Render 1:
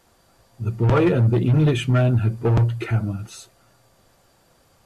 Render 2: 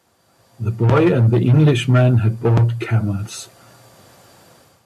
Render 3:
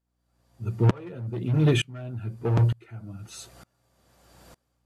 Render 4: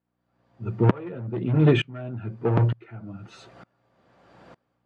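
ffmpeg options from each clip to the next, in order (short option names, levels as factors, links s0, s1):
-af "highpass=f=81:w=0.5412,highpass=f=81:w=1.3066,dynaudnorm=f=170:g=5:m=4.47,volume=0.841"
-af "aeval=exprs='val(0)+0.00316*(sin(2*PI*60*n/s)+sin(2*PI*2*60*n/s)/2+sin(2*PI*3*60*n/s)/3+sin(2*PI*4*60*n/s)/4+sin(2*PI*5*60*n/s)/5)':c=same,aeval=exprs='val(0)*pow(10,-28*if(lt(mod(-1.1*n/s,1),2*abs(-1.1)/1000),1-mod(-1.1*n/s,1)/(2*abs(-1.1)/1000),(mod(-1.1*n/s,1)-2*abs(-1.1)/1000)/(1-2*abs(-1.1)/1000))/20)':c=same,volume=0.75"
-af "highpass=140,lowpass=2400,volume=1.68"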